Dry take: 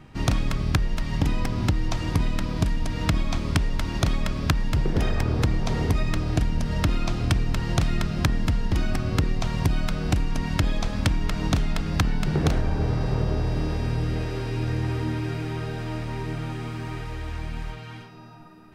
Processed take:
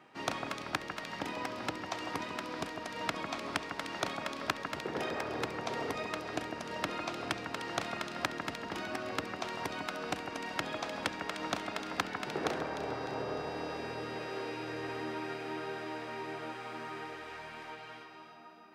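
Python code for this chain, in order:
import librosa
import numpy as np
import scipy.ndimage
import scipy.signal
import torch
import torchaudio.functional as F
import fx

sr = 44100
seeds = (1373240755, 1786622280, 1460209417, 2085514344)

y = scipy.signal.sosfilt(scipy.signal.butter(2, 460.0, 'highpass', fs=sr, output='sos'), x)
y = fx.high_shelf(y, sr, hz=3900.0, db=-8.5)
y = fx.echo_alternate(y, sr, ms=151, hz=2000.0, feedback_pct=66, wet_db=-6.0)
y = y * 10.0 ** (-3.0 / 20.0)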